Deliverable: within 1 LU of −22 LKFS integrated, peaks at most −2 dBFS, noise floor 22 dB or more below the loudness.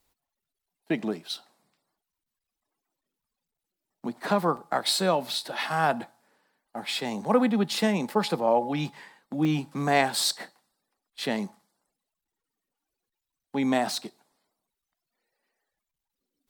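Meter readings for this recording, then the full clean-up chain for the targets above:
number of dropouts 3; longest dropout 1.6 ms; integrated loudness −27.0 LKFS; sample peak −7.5 dBFS; target loudness −22.0 LKFS
→ repair the gap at 0:04.57/0:05.34/0:09.45, 1.6 ms
level +5 dB

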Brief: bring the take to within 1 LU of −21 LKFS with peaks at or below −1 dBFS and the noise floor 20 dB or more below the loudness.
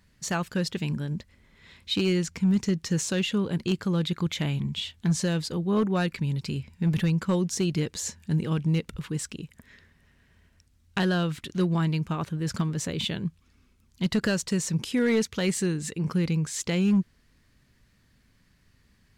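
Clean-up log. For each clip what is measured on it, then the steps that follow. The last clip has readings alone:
share of clipped samples 0.4%; peaks flattened at −17.0 dBFS; integrated loudness −27.5 LKFS; sample peak −17.0 dBFS; target loudness −21.0 LKFS
→ clipped peaks rebuilt −17 dBFS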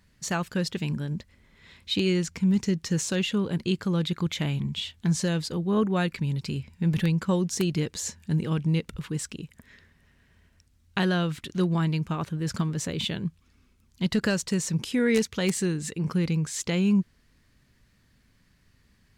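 share of clipped samples 0.0%; integrated loudness −27.5 LKFS; sample peak −8.0 dBFS; target loudness −21.0 LKFS
→ level +6.5 dB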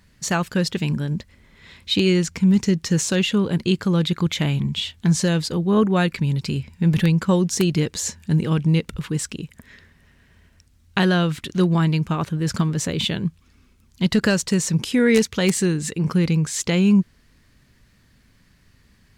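integrated loudness −21.0 LKFS; sample peak −1.5 dBFS; background noise floor −57 dBFS

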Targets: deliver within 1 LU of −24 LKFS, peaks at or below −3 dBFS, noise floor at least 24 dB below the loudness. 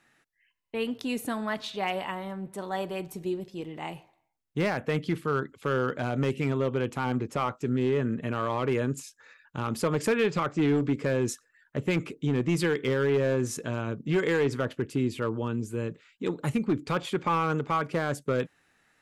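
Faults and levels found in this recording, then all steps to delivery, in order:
share of clipped samples 1.0%; peaks flattened at −19.0 dBFS; integrated loudness −29.5 LKFS; sample peak −19.0 dBFS; target loudness −24.0 LKFS
→ clipped peaks rebuilt −19 dBFS
level +5.5 dB

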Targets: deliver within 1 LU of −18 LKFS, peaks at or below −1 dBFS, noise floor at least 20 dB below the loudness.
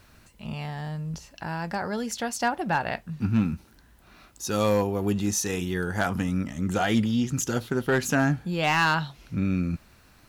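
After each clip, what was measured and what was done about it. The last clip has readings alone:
share of clipped samples 0.3%; peaks flattened at −15.0 dBFS; integrated loudness −27.0 LKFS; sample peak −15.0 dBFS; target loudness −18.0 LKFS
→ clipped peaks rebuilt −15 dBFS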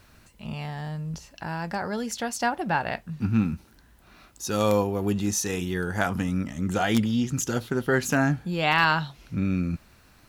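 share of clipped samples 0.0%; integrated loudness −26.5 LKFS; sample peak −6.0 dBFS; target loudness −18.0 LKFS
→ level +8.5 dB
brickwall limiter −1 dBFS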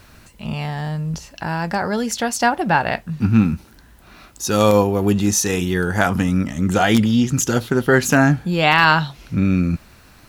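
integrated loudness −18.5 LKFS; sample peak −1.0 dBFS; background noise floor −48 dBFS

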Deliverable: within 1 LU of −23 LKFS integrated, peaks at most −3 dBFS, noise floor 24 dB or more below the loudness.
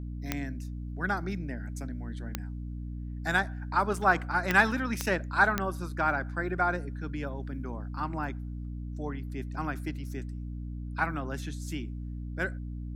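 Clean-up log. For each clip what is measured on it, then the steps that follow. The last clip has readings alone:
number of clicks 5; mains hum 60 Hz; hum harmonics up to 300 Hz; level of the hum −35 dBFS; integrated loudness −31.5 LKFS; sample peak −9.0 dBFS; target loudness −23.0 LKFS
→ click removal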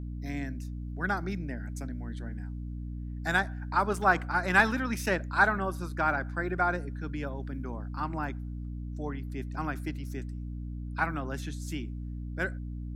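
number of clicks 0; mains hum 60 Hz; hum harmonics up to 300 Hz; level of the hum −35 dBFS
→ mains-hum notches 60/120/180/240/300 Hz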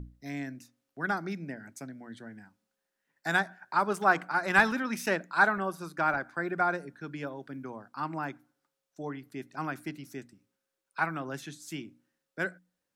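mains hum none found; integrated loudness −31.0 LKFS; sample peak −9.0 dBFS; target loudness −23.0 LKFS
→ level +8 dB
brickwall limiter −3 dBFS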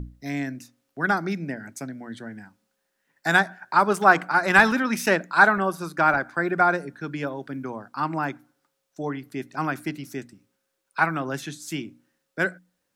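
integrated loudness −23.5 LKFS; sample peak −3.0 dBFS; background noise floor −77 dBFS

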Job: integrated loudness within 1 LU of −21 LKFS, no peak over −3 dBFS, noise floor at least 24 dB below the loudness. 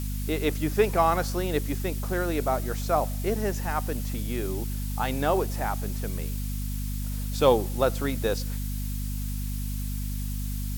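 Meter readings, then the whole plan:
mains hum 50 Hz; hum harmonics up to 250 Hz; level of the hum −28 dBFS; background noise floor −31 dBFS; target noise floor −52 dBFS; integrated loudness −28.0 LKFS; sample peak −6.0 dBFS; target loudness −21.0 LKFS
→ hum removal 50 Hz, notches 5
noise reduction from a noise print 21 dB
level +7 dB
brickwall limiter −3 dBFS

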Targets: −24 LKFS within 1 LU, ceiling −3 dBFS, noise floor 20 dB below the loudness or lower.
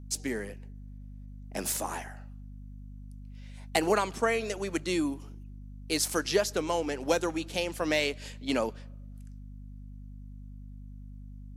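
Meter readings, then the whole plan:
mains hum 50 Hz; hum harmonics up to 250 Hz; level of the hum −42 dBFS; integrated loudness −30.5 LKFS; sample peak −12.5 dBFS; target loudness −24.0 LKFS
→ hum removal 50 Hz, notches 5
level +6.5 dB

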